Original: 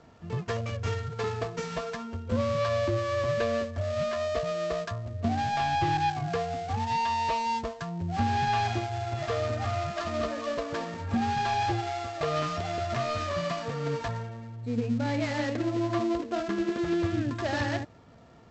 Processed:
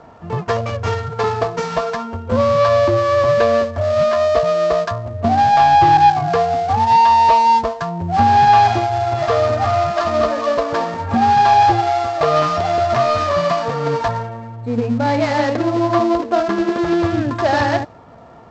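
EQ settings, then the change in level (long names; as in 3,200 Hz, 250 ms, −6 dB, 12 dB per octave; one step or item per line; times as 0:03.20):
low-shelf EQ 390 Hz +4.5 dB
parametric band 880 Hz +13 dB 2 octaves
dynamic equaliser 4,800 Hz, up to +6 dB, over −45 dBFS, Q 1.1
+3.5 dB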